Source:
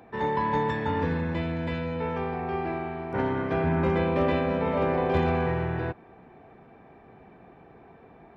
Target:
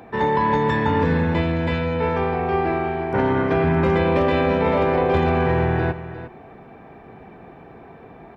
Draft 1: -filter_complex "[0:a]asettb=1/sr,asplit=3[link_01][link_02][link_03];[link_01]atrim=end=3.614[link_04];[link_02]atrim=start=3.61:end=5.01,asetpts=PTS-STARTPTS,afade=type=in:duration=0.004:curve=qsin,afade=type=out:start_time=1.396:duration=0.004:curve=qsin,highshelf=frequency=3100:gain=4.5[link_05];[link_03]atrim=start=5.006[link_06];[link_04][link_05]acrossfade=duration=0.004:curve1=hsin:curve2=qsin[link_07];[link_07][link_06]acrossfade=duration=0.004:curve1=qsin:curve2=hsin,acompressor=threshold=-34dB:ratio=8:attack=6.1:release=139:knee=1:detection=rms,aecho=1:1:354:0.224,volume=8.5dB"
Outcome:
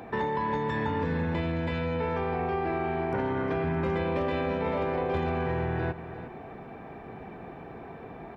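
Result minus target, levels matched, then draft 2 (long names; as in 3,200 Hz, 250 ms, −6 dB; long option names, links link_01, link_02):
downward compressor: peak gain reduction +10 dB
-filter_complex "[0:a]asettb=1/sr,asplit=3[link_01][link_02][link_03];[link_01]atrim=end=3.614[link_04];[link_02]atrim=start=3.61:end=5.01,asetpts=PTS-STARTPTS,afade=type=in:duration=0.004:curve=qsin,afade=type=out:start_time=1.396:duration=0.004:curve=qsin,highshelf=frequency=3100:gain=4.5[link_05];[link_03]atrim=start=5.006[link_06];[link_04][link_05]acrossfade=duration=0.004:curve1=hsin:curve2=qsin[link_07];[link_07][link_06]acrossfade=duration=0.004:curve1=qsin:curve2=hsin,acompressor=threshold=-22.5dB:ratio=8:attack=6.1:release=139:knee=1:detection=rms,aecho=1:1:354:0.224,volume=8.5dB"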